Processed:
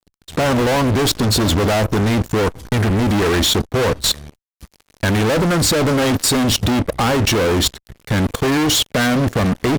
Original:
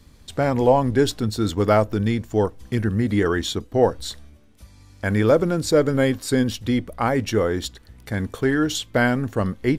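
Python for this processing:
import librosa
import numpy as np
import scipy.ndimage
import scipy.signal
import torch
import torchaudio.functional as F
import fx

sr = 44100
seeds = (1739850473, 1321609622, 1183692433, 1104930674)

y = fx.fuzz(x, sr, gain_db=34.0, gate_db=-42.0)
y = fx.level_steps(y, sr, step_db=19)
y = y * librosa.db_to_amplitude(3.5)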